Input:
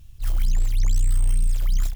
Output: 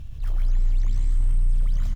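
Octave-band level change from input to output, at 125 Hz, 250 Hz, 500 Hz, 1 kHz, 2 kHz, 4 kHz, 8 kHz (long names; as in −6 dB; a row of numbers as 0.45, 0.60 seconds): −1.5, −1.0, −3.0, −3.5, −6.0, −10.5, −16.0 decibels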